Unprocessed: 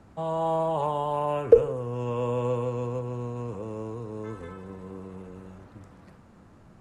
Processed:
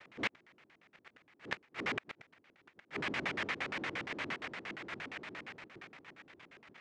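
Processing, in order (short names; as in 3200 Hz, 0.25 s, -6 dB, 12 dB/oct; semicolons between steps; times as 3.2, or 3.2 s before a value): noise vocoder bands 1; LFO low-pass square 8.6 Hz 340–2100 Hz; flipped gate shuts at -20 dBFS, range -36 dB; gain -1.5 dB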